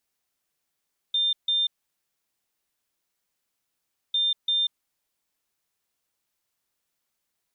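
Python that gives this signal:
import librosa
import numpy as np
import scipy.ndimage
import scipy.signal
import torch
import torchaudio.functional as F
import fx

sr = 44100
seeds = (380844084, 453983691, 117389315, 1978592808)

y = fx.beep_pattern(sr, wave='sine', hz=3600.0, on_s=0.19, off_s=0.15, beeps=2, pause_s=2.47, groups=2, level_db=-20.5)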